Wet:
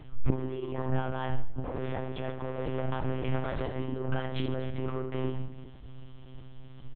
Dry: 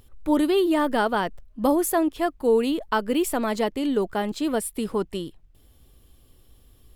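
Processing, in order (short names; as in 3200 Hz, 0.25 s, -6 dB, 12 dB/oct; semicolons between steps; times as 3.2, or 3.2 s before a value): 1.64–3.78 cycle switcher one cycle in 3, muted; LPF 2800 Hz 12 dB/oct; negative-ratio compressor -31 dBFS, ratio -1; soft clip -30 dBFS, distortion -10 dB; reverse bouncing-ball echo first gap 30 ms, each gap 1.5×, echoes 5; shoebox room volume 350 m³, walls furnished, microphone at 0.47 m; monotone LPC vocoder at 8 kHz 130 Hz; Doppler distortion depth 0.4 ms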